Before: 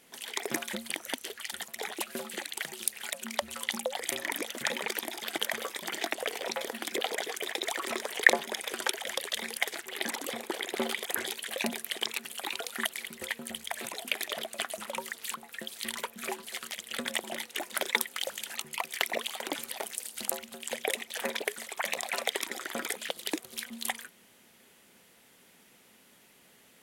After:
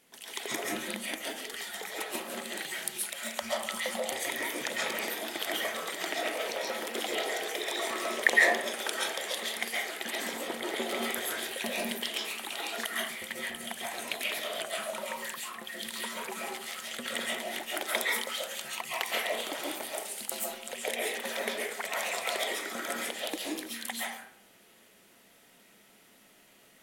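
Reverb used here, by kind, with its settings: digital reverb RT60 0.69 s, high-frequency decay 0.5×, pre-delay 95 ms, DRR -5 dB; gain -5 dB

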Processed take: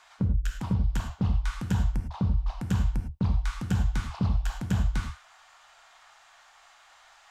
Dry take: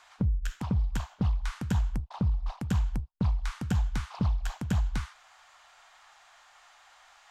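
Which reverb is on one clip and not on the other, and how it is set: non-linear reverb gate 0.13 s flat, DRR 4.5 dB

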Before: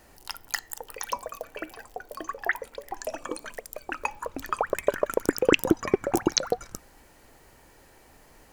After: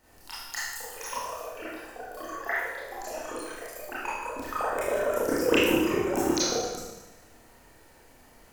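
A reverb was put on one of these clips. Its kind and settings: Schroeder reverb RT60 1.1 s, combs from 25 ms, DRR -9.5 dB; gain -10 dB

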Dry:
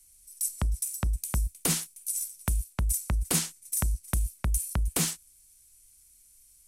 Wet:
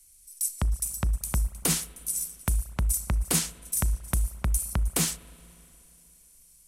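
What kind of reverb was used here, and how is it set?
spring tank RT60 3 s, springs 35/59 ms, chirp 40 ms, DRR 17 dB; gain +1.5 dB

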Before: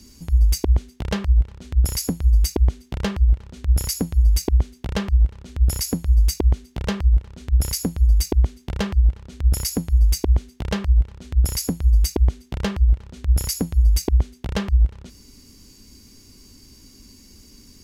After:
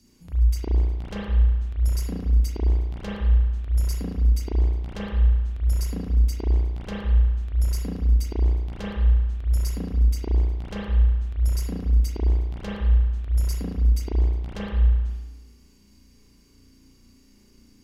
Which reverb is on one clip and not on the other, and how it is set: spring tank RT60 1.1 s, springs 34 ms, chirp 70 ms, DRR -6.5 dB; gain -13.5 dB

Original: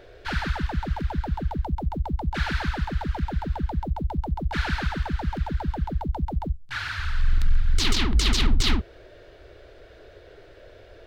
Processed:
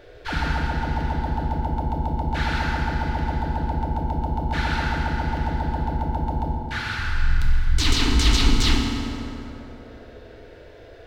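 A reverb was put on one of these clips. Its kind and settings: FDN reverb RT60 3.1 s, high-frequency decay 0.55×, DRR -1 dB

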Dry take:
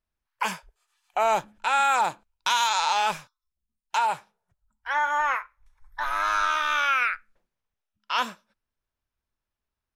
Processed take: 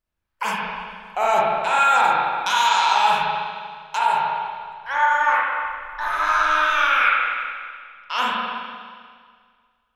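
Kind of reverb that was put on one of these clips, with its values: spring tank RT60 1.9 s, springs 39/59 ms, chirp 45 ms, DRR -5 dB

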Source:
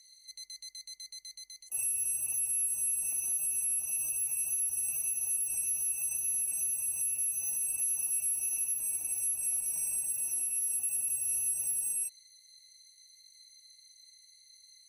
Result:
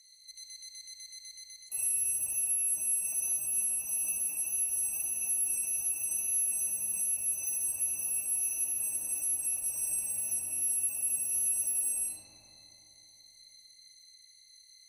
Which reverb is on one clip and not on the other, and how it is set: digital reverb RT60 3.7 s, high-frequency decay 0.3×, pre-delay 20 ms, DRR -2 dB; gain -1 dB

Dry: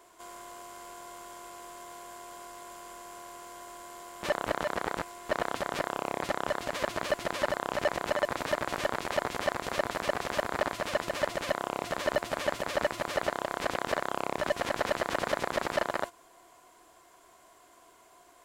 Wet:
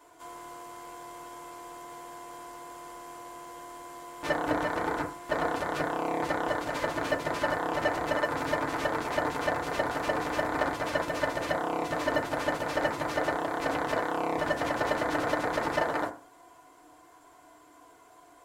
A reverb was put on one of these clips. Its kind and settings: FDN reverb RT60 0.39 s, low-frequency decay 1.1×, high-frequency decay 0.3×, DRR -3.5 dB; gain -3.5 dB

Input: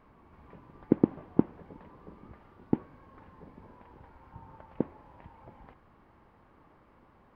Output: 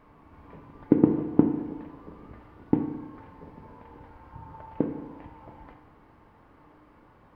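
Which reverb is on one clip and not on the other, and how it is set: FDN reverb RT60 1.1 s, low-frequency decay 1×, high-frequency decay 0.9×, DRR 4.5 dB; gain +3 dB

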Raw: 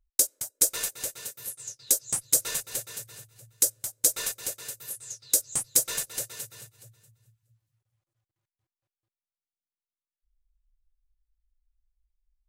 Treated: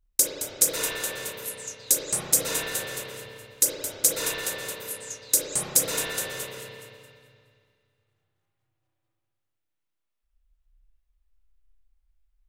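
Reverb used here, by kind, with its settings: spring tank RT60 2.1 s, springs 31/56 ms, chirp 50 ms, DRR -6 dB; gain +1.5 dB

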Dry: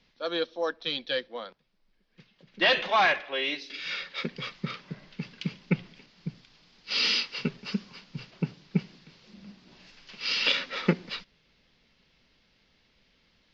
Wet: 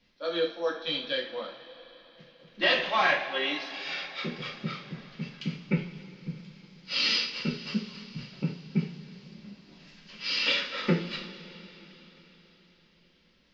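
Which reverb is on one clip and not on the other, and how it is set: two-slope reverb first 0.39 s, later 4.5 s, from -20 dB, DRR -3 dB; gain -5.5 dB

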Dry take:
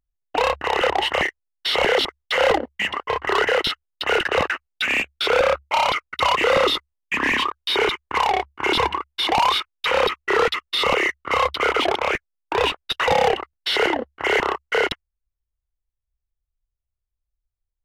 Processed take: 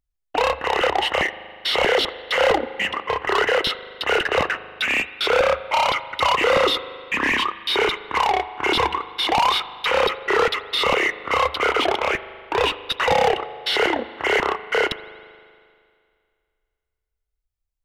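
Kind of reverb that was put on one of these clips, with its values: spring tank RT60 2.2 s, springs 39 ms, chirp 55 ms, DRR 14 dB

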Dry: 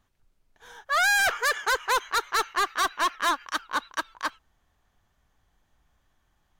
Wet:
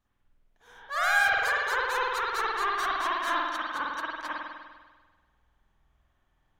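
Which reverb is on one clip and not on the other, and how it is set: spring tank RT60 1.4 s, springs 49 ms, chirp 80 ms, DRR -7.5 dB; gain -10 dB

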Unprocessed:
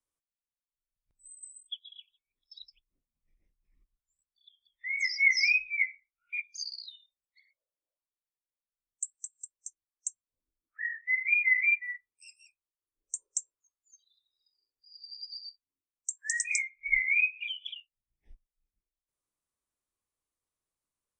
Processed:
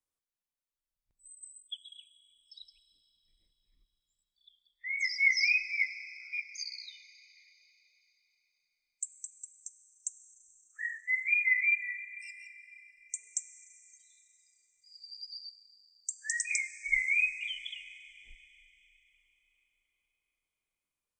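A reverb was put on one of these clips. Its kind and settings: Schroeder reverb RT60 3.9 s, combs from 33 ms, DRR 13.5 dB; gain -2 dB

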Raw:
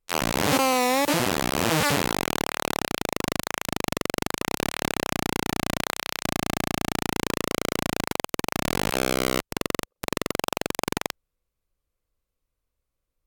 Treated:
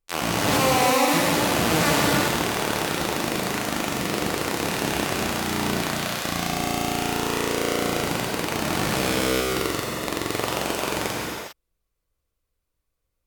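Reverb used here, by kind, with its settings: non-linear reverb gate 0.43 s flat, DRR -4 dB; gain -2.5 dB

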